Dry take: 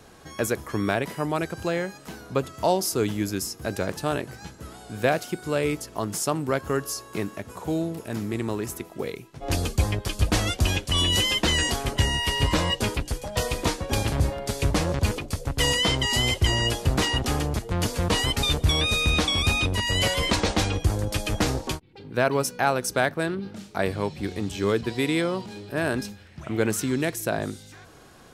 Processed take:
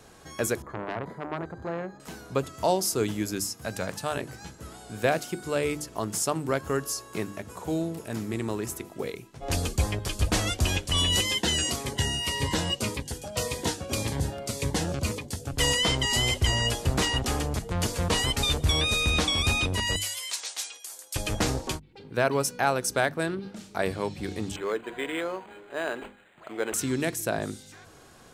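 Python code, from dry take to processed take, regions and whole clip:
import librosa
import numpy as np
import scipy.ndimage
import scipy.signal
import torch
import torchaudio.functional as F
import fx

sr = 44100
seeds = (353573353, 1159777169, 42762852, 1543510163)

y = fx.chain(x, sr, fx.moving_average(points=16),
    fx.transformer_sat(knee_hz=1600.0), at=(0.62, 2.0))
y = fx.chain(y, sr, fx.highpass(hz=80.0, slope=12),
    fx.peak_eq(hz=360.0, db=-9.0, octaves=0.66), at=(3.4, 4.17))
y = fx.chain(y, sr, fx.highpass(hz=86.0, slope=12),
    fx.notch_cascade(direction='falling', hz=1.8), at=(11.21, 15.53))
y = fx.chain(y, sr, fx.highpass(hz=460.0, slope=12),
    fx.differentiator(), at=(19.96, 21.16))
y = fx.chain(y, sr, fx.highpass(hz=450.0, slope=12),
    fx.resample_linear(factor=8), at=(24.56, 26.74))
y = fx.peak_eq(y, sr, hz=7800.0, db=3.5, octaves=0.77)
y = fx.hum_notches(y, sr, base_hz=50, count=7)
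y = F.gain(torch.from_numpy(y), -2.0).numpy()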